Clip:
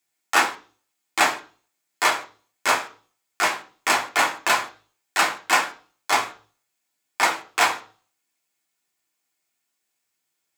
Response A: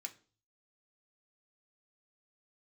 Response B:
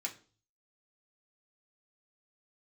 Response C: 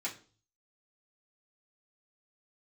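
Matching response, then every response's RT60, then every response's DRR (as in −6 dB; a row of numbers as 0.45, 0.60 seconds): B; 0.40, 0.40, 0.40 seconds; 3.5, −1.5, −7.0 decibels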